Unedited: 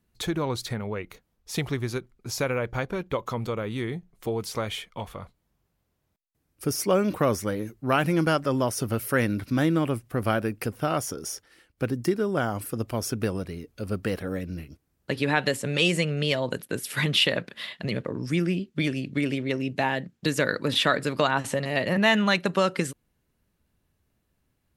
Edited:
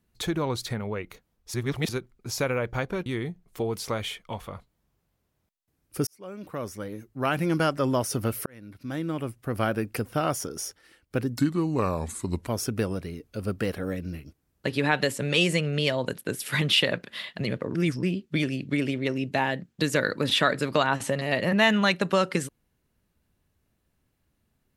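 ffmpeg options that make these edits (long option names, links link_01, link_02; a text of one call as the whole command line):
ffmpeg -i in.wav -filter_complex "[0:a]asplit=10[link_01][link_02][link_03][link_04][link_05][link_06][link_07][link_08][link_09][link_10];[link_01]atrim=end=1.542[link_11];[link_02]atrim=start=1.538:end=1.892,asetpts=PTS-STARTPTS,areverse[link_12];[link_03]atrim=start=1.888:end=3.062[link_13];[link_04]atrim=start=3.728:end=6.74,asetpts=PTS-STARTPTS,afade=type=out:start_time=3.008:duration=0.004:curve=hsin[link_14];[link_05]atrim=start=6.74:end=9.13,asetpts=PTS-STARTPTS,afade=type=in:duration=1.77,afade=type=out:start_time=2.386:duration=0.004:curve=hsin[link_15];[link_06]atrim=start=9.13:end=12.054,asetpts=PTS-STARTPTS,afade=type=in:duration=1.39[link_16];[link_07]atrim=start=12.05:end=12.91,asetpts=PTS-STARTPTS,asetrate=34839,aresample=44100[link_17];[link_08]atrim=start=12.906:end=18.192[link_18];[link_09]atrim=start=18.188:end=18.472,asetpts=PTS-STARTPTS,areverse[link_19];[link_10]atrim=start=18.468[link_20];[link_11][link_12]acrossfade=duration=0.004:curve1=hsin:curve2=hsin[link_21];[link_21][link_13]acrossfade=duration=0.004:curve1=hsin:curve2=hsin[link_22];[link_14][link_15][link_16]concat=n=3:v=0:a=1[link_23];[link_22][link_23]acrossfade=duration=0.004:curve1=hsin:curve2=hsin[link_24];[link_24][link_17]acrossfade=duration=0.004:curve1=hsin:curve2=hsin[link_25];[link_25][link_18]acrossfade=duration=0.004:curve1=hsin:curve2=hsin[link_26];[link_26][link_19]acrossfade=duration=0.004:curve1=hsin:curve2=hsin[link_27];[link_27][link_20]acrossfade=duration=0.004:curve1=hsin:curve2=hsin" out.wav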